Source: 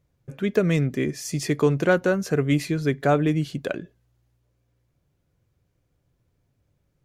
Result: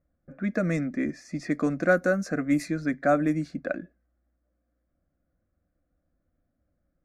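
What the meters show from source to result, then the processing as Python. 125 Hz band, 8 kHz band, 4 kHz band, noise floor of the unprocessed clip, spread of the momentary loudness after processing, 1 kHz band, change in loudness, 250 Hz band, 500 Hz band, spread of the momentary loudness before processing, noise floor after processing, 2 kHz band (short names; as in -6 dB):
-9.0 dB, -9.5 dB, -12.0 dB, -71 dBFS, 10 LU, -2.0 dB, -4.0 dB, -2.0 dB, -4.5 dB, 9 LU, -77 dBFS, -1.0 dB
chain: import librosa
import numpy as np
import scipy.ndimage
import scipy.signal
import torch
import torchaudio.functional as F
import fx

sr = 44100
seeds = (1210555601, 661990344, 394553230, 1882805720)

y = fx.fixed_phaser(x, sr, hz=620.0, stages=8)
y = fx.env_lowpass(y, sr, base_hz=1500.0, full_db=-19.0)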